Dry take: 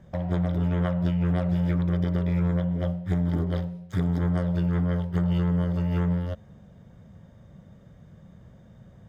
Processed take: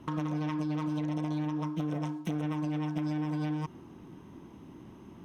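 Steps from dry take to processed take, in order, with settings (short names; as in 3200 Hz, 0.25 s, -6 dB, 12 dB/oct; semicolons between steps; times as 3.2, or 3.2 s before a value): compressor 5:1, threshold -30 dBFS, peak gain reduction 9 dB; speed mistake 45 rpm record played at 78 rpm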